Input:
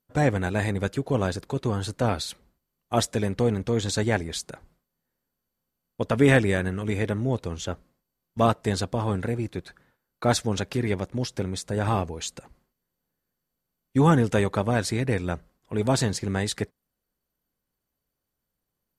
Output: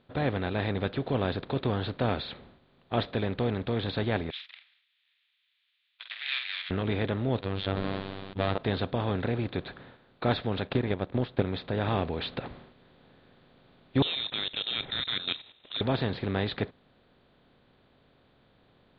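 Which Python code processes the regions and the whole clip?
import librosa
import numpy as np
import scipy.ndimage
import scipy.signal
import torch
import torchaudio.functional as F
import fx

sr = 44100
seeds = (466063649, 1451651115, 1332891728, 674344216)

y = fx.chain(x, sr, fx.lower_of_two(delay_ms=0.34),
    fx.steep_highpass(hz=2000.0, slope=36),
    fx.doubler(ms=48.0, db=-10.0), at=(4.3, 6.71))
y = fx.chain(y, sr, fx.clip_hard(threshold_db=-23.0),
    fx.robotise(hz=97.0),
    fx.sustainer(db_per_s=35.0), at=(7.41, 8.58))
y = fx.chain(y, sr, fx.transient(attack_db=10, sustain_db=-6),
    fx.high_shelf(hz=3400.0, db=-11.0), at=(10.67, 11.46))
y = fx.chain(y, sr, fx.low_shelf_res(hz=140.0, db=-10.5, q=1.5),
    fx.level_steps(step_db=14),
    fx.freq_invert(carrier_hz=3900), at=(14.02, 15.81))
y = fx.bin_compress(y, sr, power=0.6)
y = scipy.signal.sosfilt(scipy.signal.butter(12, 4200.0, 'lowpass', fs=sr, output='sos'), y)
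y = fx.rider(y, sr, range_db=4, speed_s=0.5)
y = F.gain(torch.from_numpy(y), -7.0).numpy()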